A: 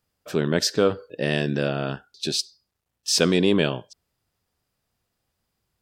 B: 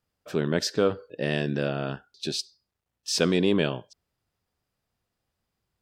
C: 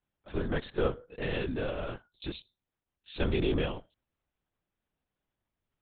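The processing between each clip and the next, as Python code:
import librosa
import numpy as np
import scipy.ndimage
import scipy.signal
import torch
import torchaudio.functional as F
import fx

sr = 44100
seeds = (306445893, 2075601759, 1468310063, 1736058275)

y1 = fx.high_shelf(x, sr, hz=5100.0, db=-5.5)
y1 = F.gain(torch.from_numpy(y1), -3.0).numpy()
y2 = fx.lpc_vocoder(y1, sr, seeds[0], excitation='whisper', order=8)
y2 = F.gain(torch.from_numpy(y2), -5.5).numpy()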